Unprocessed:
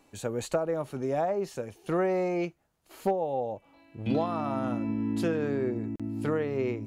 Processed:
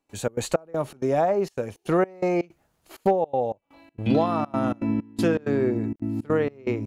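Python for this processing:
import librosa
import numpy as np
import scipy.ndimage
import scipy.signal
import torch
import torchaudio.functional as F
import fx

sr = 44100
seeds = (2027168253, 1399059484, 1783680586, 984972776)

y = fx.step_gate(x, sr, bpm=162, pattern='.xx.xx..xx.xxxxx', floor_db=-24.0, edge_ms=4.5)
y = y * librosa.db_to_amplitude(6.5)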